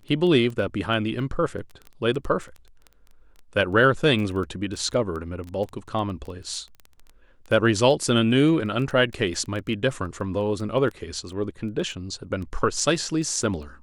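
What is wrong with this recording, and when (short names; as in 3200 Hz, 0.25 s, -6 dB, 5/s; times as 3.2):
crackle 10/s -30 dBFS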